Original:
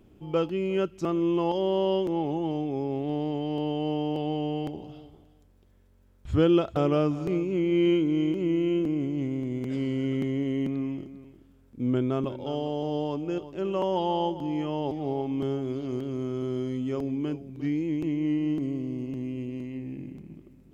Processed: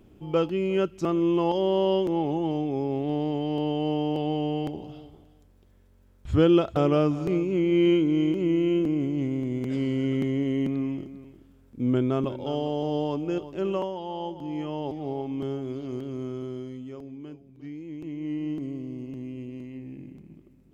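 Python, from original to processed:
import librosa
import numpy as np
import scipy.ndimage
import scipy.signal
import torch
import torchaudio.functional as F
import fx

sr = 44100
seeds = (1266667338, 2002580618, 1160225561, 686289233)

y = fx.gain(x, sr, db=fx.line((13.73, 2.0), (13.97, -9.0), (14.6, -2.0), (16.28, -2.0), (17.03, -11.0), (17.8, -11.0), (18.42, -3.5)))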